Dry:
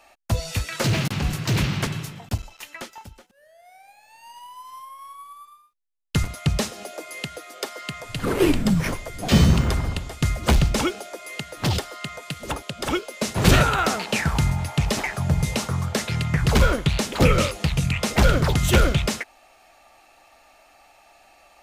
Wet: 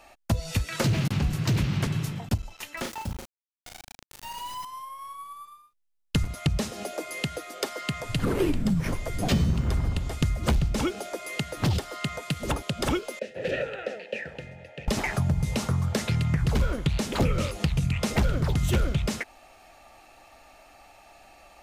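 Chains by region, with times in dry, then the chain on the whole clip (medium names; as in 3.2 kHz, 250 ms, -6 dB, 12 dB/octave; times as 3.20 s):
2.77–4.65 s: small samples zeroed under -43 dBFS + doubling 36 ms -7 dB + level flattener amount 50%
13.19–14.88 s: vowel filter e + hum notches 50/100/150/200/250/300/350 Hz
whole clip: bass shelf 340 Hz +7.5 dB; compression 4:1, threshold -23 dBFS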